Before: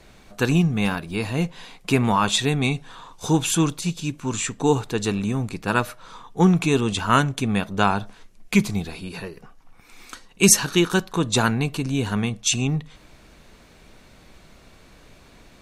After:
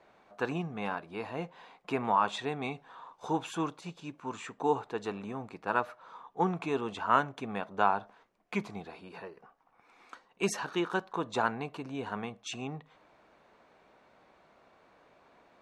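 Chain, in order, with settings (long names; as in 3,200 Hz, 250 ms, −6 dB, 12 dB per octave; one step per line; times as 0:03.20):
resonant band-pass 830 Hz, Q 1.1
level −4 dB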